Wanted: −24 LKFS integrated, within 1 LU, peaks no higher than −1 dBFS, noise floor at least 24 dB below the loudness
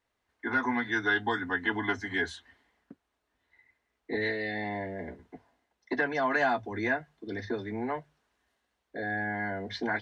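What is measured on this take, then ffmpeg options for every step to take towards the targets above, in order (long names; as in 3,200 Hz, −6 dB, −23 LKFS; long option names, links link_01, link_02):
integrated loudness −31.5 LKFS; sample peak −15.5 dBFS; target loudness −24.0 LKFS
→ -af "volume=7.5dB"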